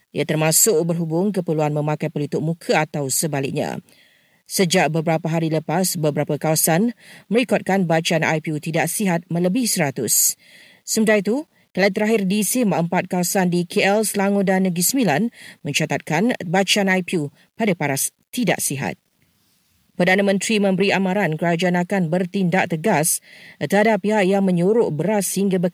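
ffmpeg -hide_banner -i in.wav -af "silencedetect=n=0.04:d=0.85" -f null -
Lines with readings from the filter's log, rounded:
silence_start: 18.93
silence_end: 20.00 | silence_duration: 1.06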